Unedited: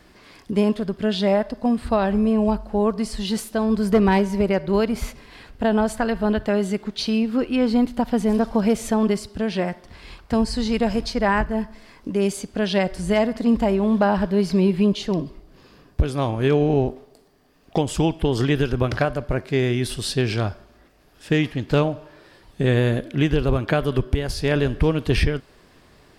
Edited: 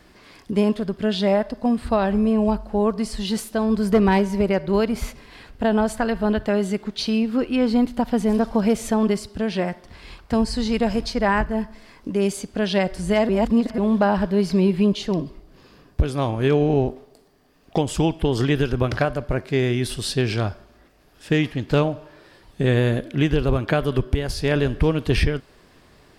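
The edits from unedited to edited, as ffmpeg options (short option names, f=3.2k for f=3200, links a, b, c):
-filter_complex "[0:a]asplit=3[a][b][c];[a]atrim=end=13.292[d];[b]atrim=start=13.288:end=13.782,asetpts=PTS-STARTPTS,areverse[e];[c]atrim=start=13.778[f];[d][e]acrossfade=d=0.004:c1=hsin:c2=hsin[g];[g][f]acrossfade=d=0.004:c1=hsin:c2=hsin"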